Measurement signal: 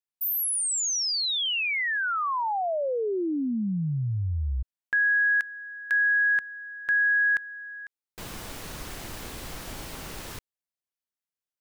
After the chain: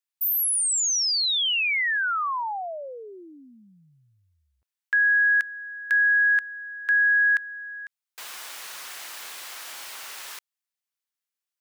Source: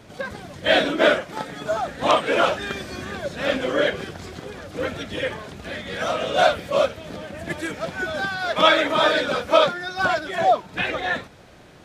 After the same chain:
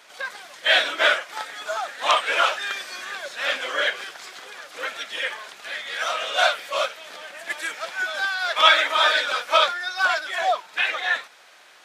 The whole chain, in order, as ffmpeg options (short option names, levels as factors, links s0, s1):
-af "highpass=1100,volume=1.5"